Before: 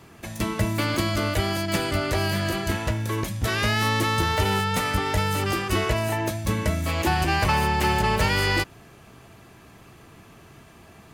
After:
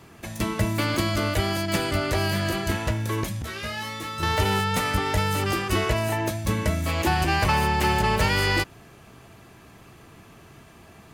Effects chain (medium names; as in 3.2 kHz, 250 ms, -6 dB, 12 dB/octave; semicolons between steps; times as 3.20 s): 3.42–4.23 s: feedback comb 78 Hz, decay 0.26 s, harmonics all, mix 100%